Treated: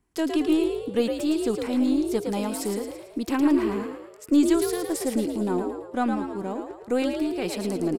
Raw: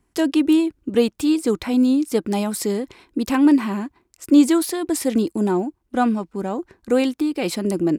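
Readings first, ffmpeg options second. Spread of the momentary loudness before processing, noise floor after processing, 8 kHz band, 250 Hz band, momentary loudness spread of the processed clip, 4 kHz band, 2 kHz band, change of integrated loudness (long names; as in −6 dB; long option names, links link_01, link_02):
11 LU, −46 dBFS, −5.5 dB, −6.0 dB, 10 LU, −5.0 dB, −5.0 dB, −5.5 dB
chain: -filter_complex "[0:a]aeval=exprs='0.631*(cos(1*acos(clip(val(0)/0.631,-1,1)))-cos(1*PI/2))+0.0158*(cos(4*acos(clip(val(0)/0.631,-1,1)))-cos(4*PI/2))+0.00501*(cos(8*acos(clip(val(0)/0.631,-1,1)))-cos(8*PI/2))':channel_layout=same,asplit=7[link_01][link_02][link_03][link_04][link_05][link_06][link_07];[link_02]adelay=111,afreqshift=55,volume=-6dB[link_08];[link_03]adelay=222,afreqshift=110,volume=-12.4dB[link_09];[link_04]adelay=333,afreqshift=165,volume=-18.8dB[link_10];[link_05]adelay=444,afreqshift=220,volume=-25.1dB[link_11];[link_06]adelay=555,afreqshift=275,volume=-31.5dB[link_12];[link_07]adelay=666,afreqshift=330,volume=-37.9dB[link_13];[link_01][link_08][link_09][link_10][link_11][link_12][link_13]amix=inputs=7:normalize=0,volume=-6.5dB"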